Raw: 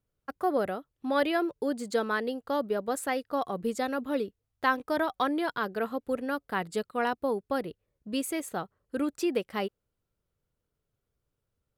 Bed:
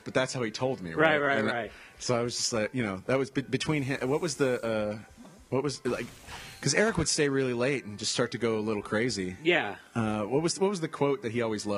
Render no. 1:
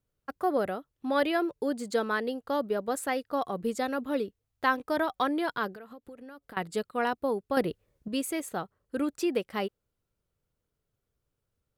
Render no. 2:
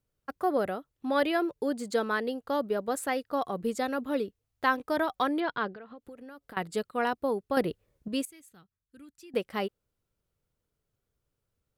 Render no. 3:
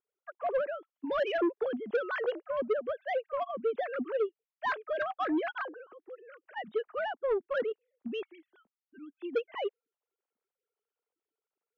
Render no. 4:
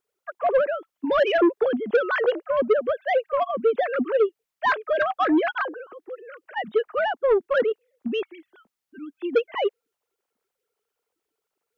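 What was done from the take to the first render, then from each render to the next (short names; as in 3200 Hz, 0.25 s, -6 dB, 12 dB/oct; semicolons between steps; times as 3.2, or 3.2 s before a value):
5.74–6.57 compressor 20:1, threshold -42 dBFS; 7.57–8.08 gain +7 dB
5.4–6 LPF 4200 Hz 24 dB/oct; 8.25–9.34 passive tone stack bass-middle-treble 6-0-2
sine-wave speech; soft clip -23 dBFS, distortion -11 dB
gain +10 dB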